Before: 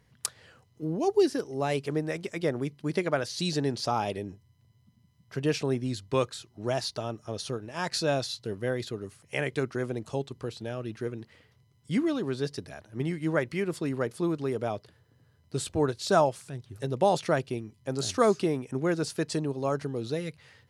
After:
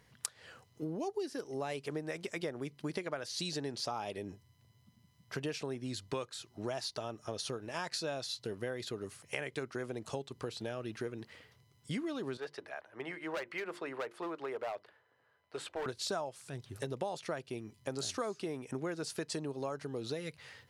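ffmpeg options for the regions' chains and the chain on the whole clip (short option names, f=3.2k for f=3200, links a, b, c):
-filter_complex "[0:a]asettb=1/sr,asplit=3[a][b][c];[a]atrim=end=12.374[d];[b]atrim=start=12.37:end=15.86,asetpts=PTS-STARTPTS,afade=t=in:d=0.004:c=qsin,afade=t=out:st=3.486:d=0.004:c=qsin,acrossover=split=460 2700:gain=0.1 1 0.126[e][f][g];[e][f][g]amix=inputs=3:normalize=0,asoftclip=type=hard:threshold=-31dB,bandreject=f=50:t=h:w=6,bandreject=f=100:t=h:w=6,bandreject=f=150:t=h:w=6,bandreject=f=200:t=h:w=6,bandreject=f=250:t=h:w=6,bandreject=f=300:t=h:w=6,bandreject=f=350:t=h:w=6[h];[c]atrim=start=15.856[i];[d][h]acrossfade=d=0.004:c1=hsin:c2=qsin[j];[j][i]acrossfade=d=0.004:c1=qsin:c2=hsin,lowshelf=f=290:g=-8,acompressor=threshold=-39dB:ratio=6,volume=3.5dB"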